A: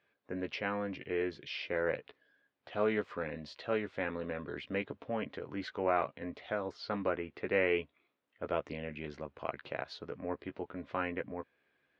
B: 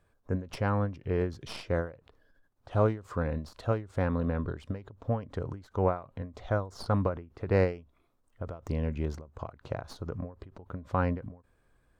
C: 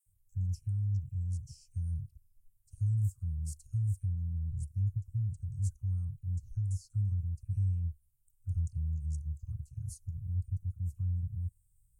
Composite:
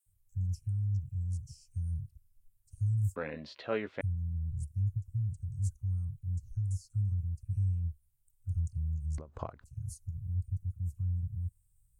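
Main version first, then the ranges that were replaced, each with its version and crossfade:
C
3.16–4.01 from A
9.18–9.64 from B

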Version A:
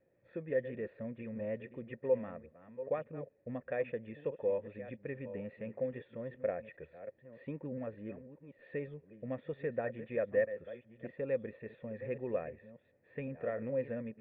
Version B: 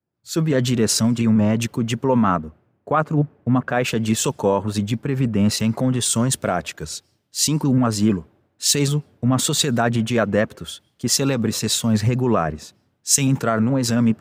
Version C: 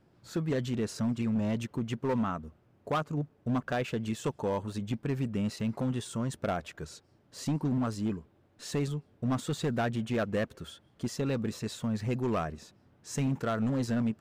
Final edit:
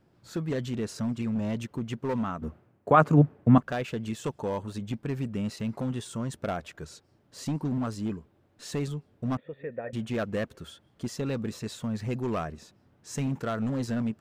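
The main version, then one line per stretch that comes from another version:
C
2.42–3.58 from B
9.37–9.93 from A

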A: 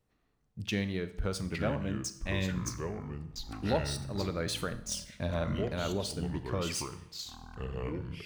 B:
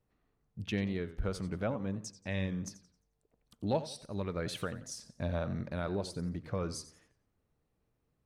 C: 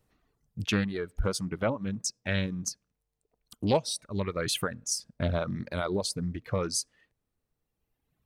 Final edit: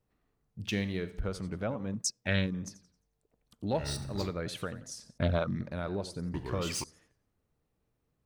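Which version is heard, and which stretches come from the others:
B
0.64–1.2 from A
1.94–2.54 from C
3.81–4.31 from A, crossfade 0.16 s
5.18–5.61 from C
6.34–6.84 from A

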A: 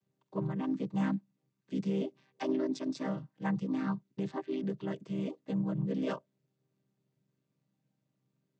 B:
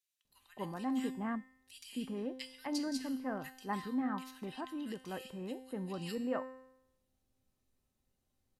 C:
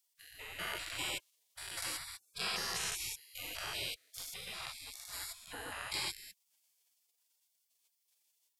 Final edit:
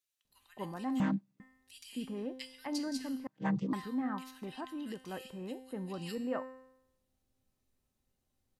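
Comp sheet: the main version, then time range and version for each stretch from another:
B
1–1.4 from A
3.27–3.73 from A
not used: C

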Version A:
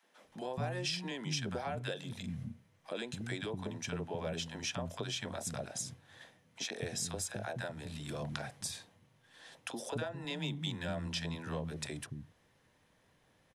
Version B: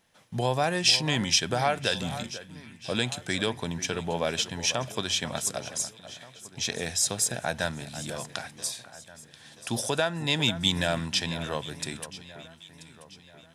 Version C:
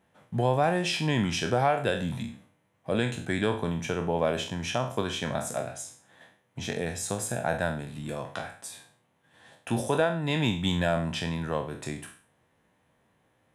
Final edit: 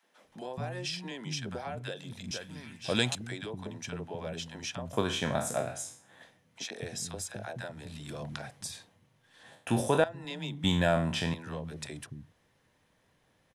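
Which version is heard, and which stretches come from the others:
A
2.31–3.15 from B
4.93–6.23 from C
9.43–10.04 from C
10.64–11.34 from C

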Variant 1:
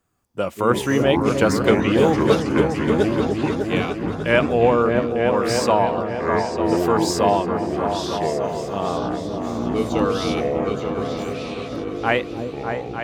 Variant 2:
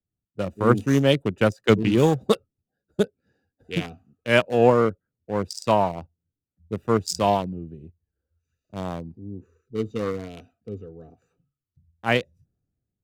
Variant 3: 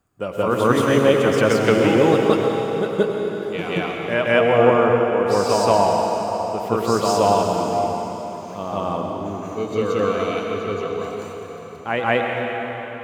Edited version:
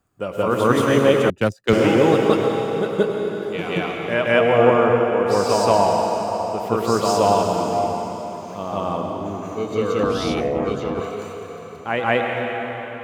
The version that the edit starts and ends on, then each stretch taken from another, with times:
3
1.3–1.73 from 2
10.03–11 from 1

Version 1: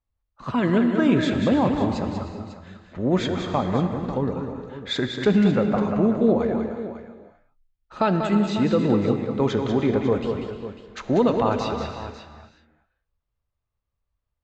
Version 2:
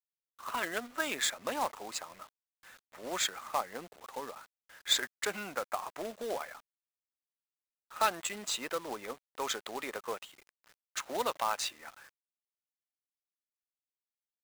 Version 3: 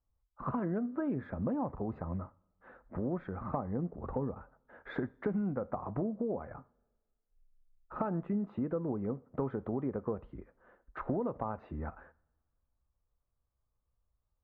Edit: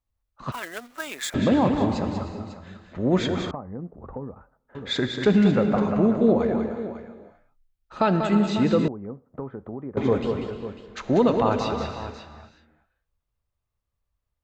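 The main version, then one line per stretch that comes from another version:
1
0.52–1.34 from 2
3.51–4.75 from 3
8.88–9.97 from 3

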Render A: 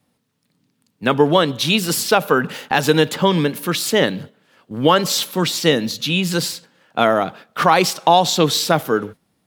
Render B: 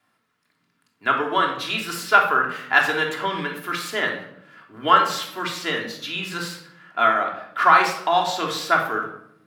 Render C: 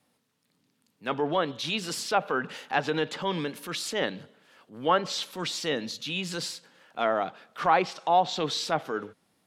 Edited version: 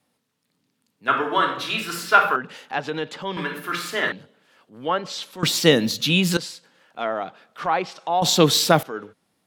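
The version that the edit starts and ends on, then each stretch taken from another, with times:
C
1.08–2.36 from B
3.37–4.12 from B
5.43–6.37 from A
8.22–8.83 from A

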